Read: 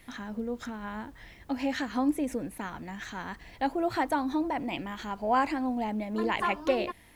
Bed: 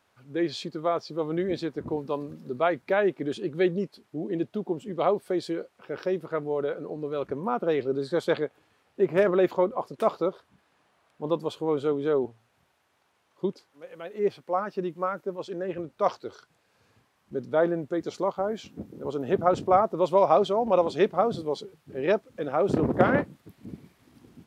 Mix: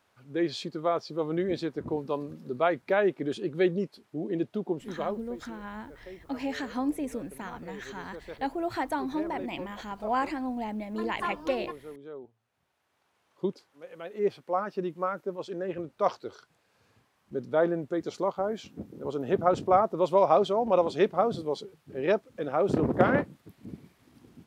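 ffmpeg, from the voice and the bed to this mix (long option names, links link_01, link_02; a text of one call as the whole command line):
ffmpeg -i stem1.wav -i stem2.wav -filter_complex "[0:a]adelay=4800,volume=-2.5dB[link_01];[1:a]volume=15.5dB,afade=type=out:start_time=4.74:duration=0.5:silence=0.141254,afade=type=in:start_time=12.32:duration=0.96:silence=0.149624[link_02];[link_01][link_02]amix=inputs=2:normalize=0" out.wav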